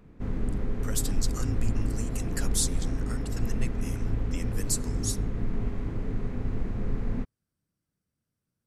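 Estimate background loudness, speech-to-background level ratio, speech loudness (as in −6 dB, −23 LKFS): −33.0 LKFS, −2.0 dB, −35.0 LKFS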